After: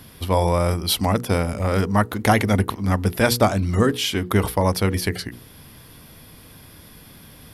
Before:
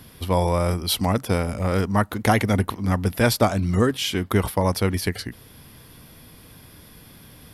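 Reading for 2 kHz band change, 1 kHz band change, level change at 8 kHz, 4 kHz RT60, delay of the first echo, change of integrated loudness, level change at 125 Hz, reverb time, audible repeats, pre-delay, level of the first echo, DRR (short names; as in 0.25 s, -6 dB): +2.0 dB, +2.0 dB, +2.0 dB, none, none, +1.5 dB, +1.5 dB, none, none, none, none, none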